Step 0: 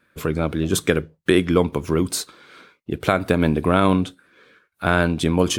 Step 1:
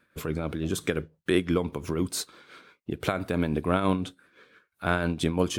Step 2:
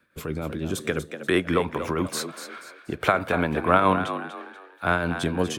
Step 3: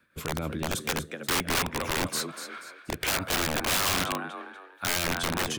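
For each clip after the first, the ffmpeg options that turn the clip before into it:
-filter_complex "[0:a]asplit=2[s0][s1];[s1]acompressor=threshold=0.0562:ratio=6,volume=0.891[s2];[s0][s2]amix=inputs=2:normalize=0,tremolo=f=5.9:d=0.5,volume=0.422"
-filter_complex "[0:a]acrossover=split=230|650|2200[s0][s1][s2][s3];[s2]dynaudnorm=f=350:g=7:m=3.76[s4];[s0][s1][s4][s3]amix=inputs=4:normalize=0,asplit=5[s5][s6][s7][s8][s9];[s6]adelay=241,afreqshift=64,volume=0.316[s10];[s7]adelay=482,afreqshift=128,volume=0.114[s11];[s8]adelay=723,afreqshift=192,volume=0.0412[s12];[s9]adelay=964,afreqshift=256,volume=0.0148[s13];[s5][s10][s11][s12][s13]amix=inputs=5:normalize=0"
-af "aeval=exprs='(mod(9.44*val(0)+1,2)-1)/9.44':c=same,equalizer=f=450:w=0.79:g=-3.5"

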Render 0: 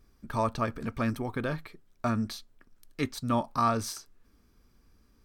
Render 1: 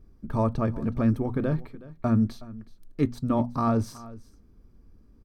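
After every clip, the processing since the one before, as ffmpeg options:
-af "tiltshelf=f=810:g=9.5,bandreject=f=60:t=h:w=6,bandreject=f=120:t=h:w=6,bandreject=f=180:t=h:w=6,bandreject=f=240:t=h:w=6,aecho=1:1:370:0.112"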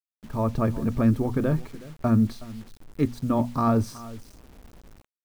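-af "dynaudnorm=f=120:g=7:m=4.47,acrusher=bits=6:mix=0:aa=0.000001,volume=0.376"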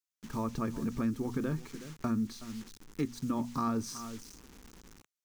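-af "equalizer=f=100:t=o:w=0.67:g=-8,equalizer=f=630:t=o:w=0.67:g=-11,equalizer=f=6300:t=o:w=0.67:g=7,acompressor=threshold=0.0282:ratio=2.5,lowshelf=f=74:g=-9.5"

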